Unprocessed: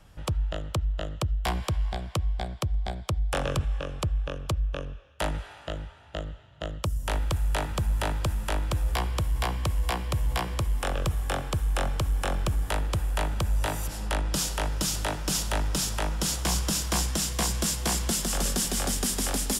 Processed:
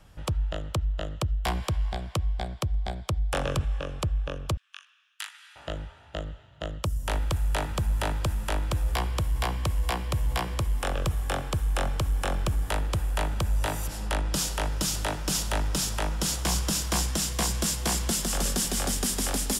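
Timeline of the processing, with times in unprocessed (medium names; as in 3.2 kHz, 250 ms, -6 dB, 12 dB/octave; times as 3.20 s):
4.57–5.56 s: Bessel high-pass 2.1 kHz, order 8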